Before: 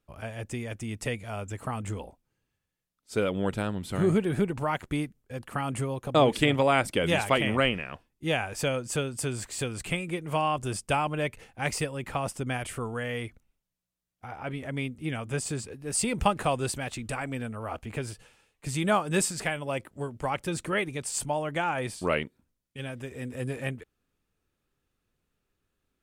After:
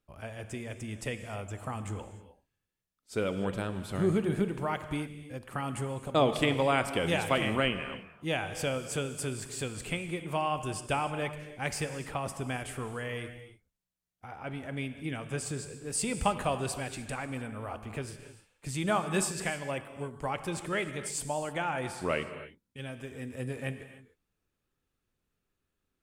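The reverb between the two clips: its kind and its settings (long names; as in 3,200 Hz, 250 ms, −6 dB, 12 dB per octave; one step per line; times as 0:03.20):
reverb whose tail is shaped and stops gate 330 ms flat, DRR 9 dB
level −4 dB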